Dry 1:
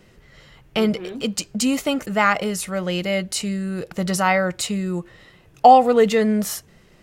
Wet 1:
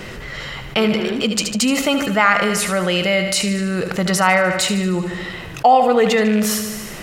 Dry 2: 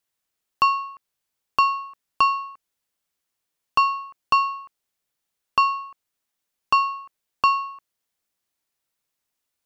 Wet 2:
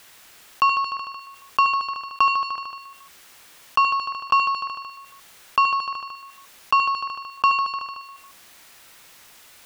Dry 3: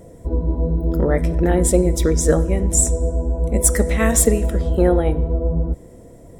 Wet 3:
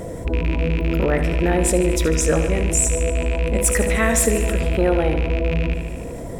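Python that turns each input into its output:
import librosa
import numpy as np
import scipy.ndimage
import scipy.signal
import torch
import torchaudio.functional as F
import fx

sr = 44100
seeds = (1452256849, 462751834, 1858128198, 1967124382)

p1 = fx.rattle_buzz(x, sr, strikes_db=-20.0, level_db=-22.0)
p2 = fx.peak_eq(p1, sr, hz=1800.0, db=6.0, octaves=2.8)
p3 = p2 + fx.echo_feedback(p2, sr, ms=75, feedback_pct=58, wet_db=-11.0, dry=0)
p4 = fx.env_flatten(p3, sr, amount_pct=50)
y = F.gain(torch.from_numpy(p4), -5.5).numpy()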